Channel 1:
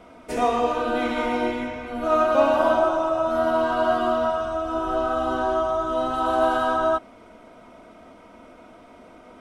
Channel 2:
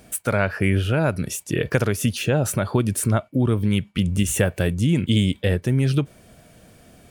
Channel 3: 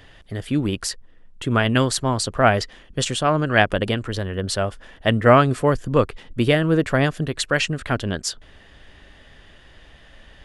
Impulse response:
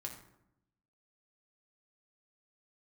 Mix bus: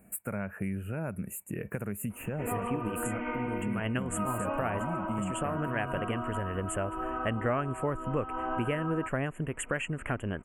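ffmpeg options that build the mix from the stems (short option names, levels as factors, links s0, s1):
-filter_complex "[0:a]lowpass=f=4000:w=0.5412,lowpass=f=4000:w=1.3066,equalizer=f=660:t=o:w=0.22:g=-12,adelay=2100,volume=0.75[s0];[1:a]equalizer=f=200:t=o:w=0.33:g=10,equalizer=f=3150:t=o:w=0.33:g=-11,equalizer=f=12500:t=o:w=0.33:g=10,volume=0.251,asplit=2[s1][s2];[2:a]adelay=2200,volume=0.944[s3];[s2]apad=whole_len=557612[s4];[s3][s4]sidechaincompress=threshold=0.0282:ratio=8:attack=16:release=112[s5];[s0][s1][s5]amix=inputs=3:normalize=0,asuperstop=centerf=4600:order=12:qfactor=1.1,acompressor=threshold=0.0251:ratio=3"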